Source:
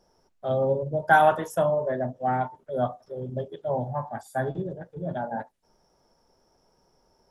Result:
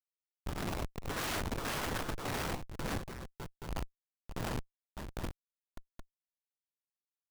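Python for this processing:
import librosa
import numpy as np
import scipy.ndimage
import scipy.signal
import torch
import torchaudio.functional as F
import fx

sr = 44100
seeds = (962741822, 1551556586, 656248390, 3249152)

y = fx.spec_gate(x, sr, threshold_db=-20, keep='weak')
y = fx.peak_eq(y, sr, hz=3300.0, db=-7.5, octaves=0.53)
y = fx.schmitt(y, sr, flips_db=-38.0)
y = fx.echo_multitap(y, sr, ms=(63, 74, 97, 100, 605, 825), db=(-5.5, -17.5, -6.5, -7.5, -15.0, -16.5))
y = (np.mod(10.0 ** (49.5 / 20.0) * y + 1.0, 2.0) - 1.0) / 10.0 ** (49.5 / 20.0)
y = F.gain(torch.from_numpy(y), 18.0).numpy()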